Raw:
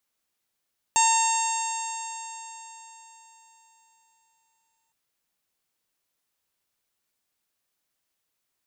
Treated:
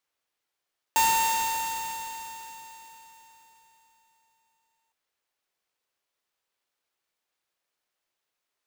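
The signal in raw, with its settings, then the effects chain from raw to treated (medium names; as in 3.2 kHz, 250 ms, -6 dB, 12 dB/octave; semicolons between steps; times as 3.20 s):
stretched partials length 3.96 s, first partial 904 Hz, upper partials -15/-9/-15/-15/-17.5/-7/-2.5/-13 dB, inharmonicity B 0.0012, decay 4.04 s, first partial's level -19 dB
high-pass 350 Hz 24 dB/octave; treble shelf 6.9 kHz -6 dB; sampling jitter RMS 0.024 ms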